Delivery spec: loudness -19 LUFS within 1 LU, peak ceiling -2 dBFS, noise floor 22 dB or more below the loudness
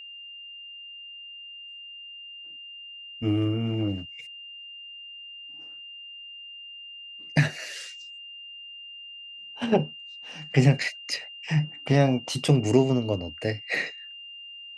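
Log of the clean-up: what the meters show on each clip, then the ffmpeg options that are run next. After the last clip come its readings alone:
steady tone 2800 Hz; tone level -40 dBFS; loudness -26.0 LUFS; peak -7.0 dBFS; loudness target -19.0 LUFS
-> -af "bandreject=f=2.8k:w=30"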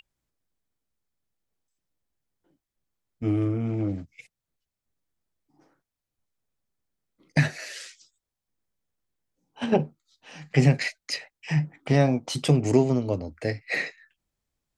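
steady tone none; loudness -25.5 LUFS; peak -7.0 dBFS; loudness target -19.0 LUFS
-> -af "volume=6.5dB,alimiter=limit=-2dB:level=0:latency=1"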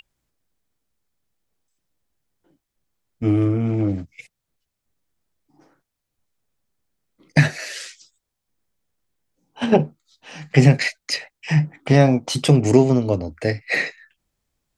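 loudness -19.5 LUFS; peak -2.0 dBFS; noise floor -81 dBFS

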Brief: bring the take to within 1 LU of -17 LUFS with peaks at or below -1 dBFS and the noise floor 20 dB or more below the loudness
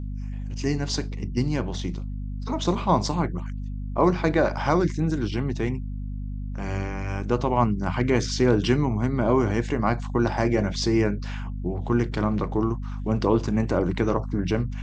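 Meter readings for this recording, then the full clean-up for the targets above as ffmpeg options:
hum 50 Hz; harmonics up to 250 Hz; hum level -29 dBFS; loudness -25.5 LUFS; peak -6.0 dBFS; loudness target -17.0 LUFS
-> -af "bandreject=f=50:t=h:w=6,bandreject=f=100:t=h:w=6,bandreject=f=150:t=h:w=6,bandreject=f=200:t=h:w=6,bandreject=f=250:t=h:w=6"
-af "volume=8.5dB,alimiter=limit=-1dB:level=0:latency=1"

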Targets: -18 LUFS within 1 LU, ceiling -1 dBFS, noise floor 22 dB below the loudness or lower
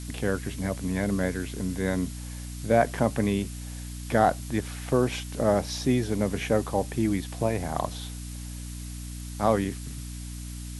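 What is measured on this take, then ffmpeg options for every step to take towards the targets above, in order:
hum 60 Hz; harmonics up to 300 Hz; hum level -35 dBFS; noise floor -37 dBFS; noise floor target -50 dBFS; loudness -28.0 LUFS; peak -7.5 dBFS; loudness target -18.0 LUFS
-> -af "bandreject=f=60:t=h:w=6,bandreject=f=120:t=h:w=6,bandreject=f=180:t=h:w=6,bandreject=f=240:t=h:w=6,bandreject=f=300:t=h:w=6"
-af "afftdn=nr=13:nf=-37"
-af "volume=10dB,alimiter=limit=-1dB:level=0:latency=1"

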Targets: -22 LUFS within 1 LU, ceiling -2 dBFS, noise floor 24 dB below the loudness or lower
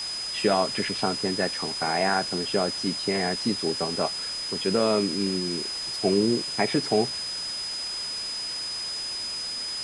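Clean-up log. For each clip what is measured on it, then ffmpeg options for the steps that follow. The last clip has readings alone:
steady tone 5000 Hz; tone level -30 dBFS; noise floor -32 dBFS; noise floor target -50 dBFS; loudness -26.0 LUFS; peak -9.5 dBFS; loudness target -22.0 LUFS
-> -af "bandreject=f=5k:w=30"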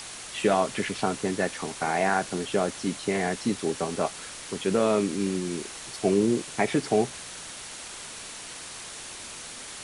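steady tone none; noise floor -41 dBFS; noise floor target -53 dBFS
-> -af "afftdn=nr=12:nf=-41"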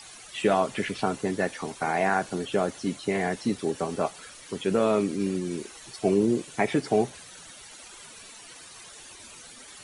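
noise floor -47 dBFS; noise floor target -52 dBFS
-> -af "afftdn=nr=6:nf=-47"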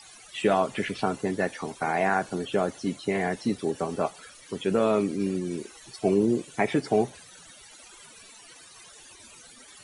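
noise floor -50 dBFS; noise floor target -52 dBFS
-> -af "afftdn=nr=6:nf=-50"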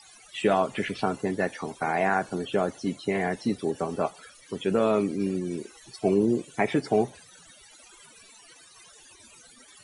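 noise floor -53 dBFS; loudness -27.5 LUFS; peak -9.5 dBFS; loudness target -22.0 LUFS
-> -af "volume=5.5dB"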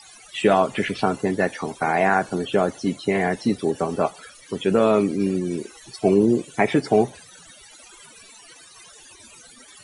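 loudness -22.0 LUFS; peak -4.0 dBFS; noise floor -48 dBFS

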